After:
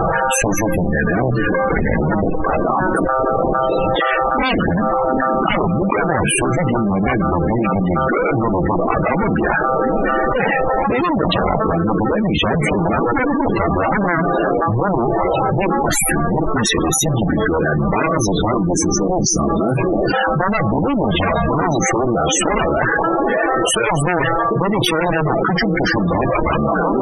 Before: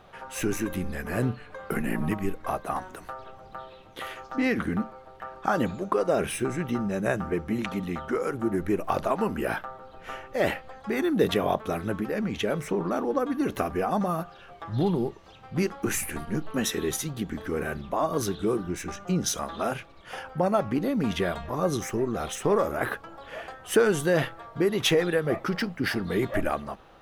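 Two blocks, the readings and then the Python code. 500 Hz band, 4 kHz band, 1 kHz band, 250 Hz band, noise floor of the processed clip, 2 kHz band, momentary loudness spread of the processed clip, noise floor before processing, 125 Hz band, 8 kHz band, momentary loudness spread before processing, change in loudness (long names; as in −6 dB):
+10.0 dB, +11.0 dB, +15.0 dB, +11.0 dB, −18 dBFS, +13.5 dB, 1 LU, −49 dBFS, +13.0 dB, +13.5 dB, 14 LU, +11.5 dB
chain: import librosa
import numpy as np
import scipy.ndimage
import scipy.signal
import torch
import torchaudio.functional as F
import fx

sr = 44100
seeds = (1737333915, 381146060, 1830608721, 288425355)

p1 = fx.spec_box(x, sr, start_s=18.61, length_s=1.53, low_hz=450.0, high_hz=4500.0, gain_db=-11)
p2 = p1 + 0.44 * np.pad(p1, (int(6.1 * sr / 1000.0), 0))[:len(p1)]
p3 = fx.level_steps(p2, sr, step_db=14)
p4 = p2 + F.gain(torch.from_numpy(p3), 0.5).numpy()
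p5 = fx.cheby_harmonics(p4, sr, harmonics=(5, 7, 8), levels_db=(-40, -9, -25), full_scale_db=-4.5)
p6 = fx.echo_stepped(p5, sr, ms=745, hz=300.0, octaves=0.7, feedback_pct=70, wet_db=-11)
p7 = fx.spec_topn(p6, sr, count=32)
p8 = fx.env_flatten(p7, sr, amount_pct=100)
y = F.gain(torch.from_numpy(p8), -2.5).numpy()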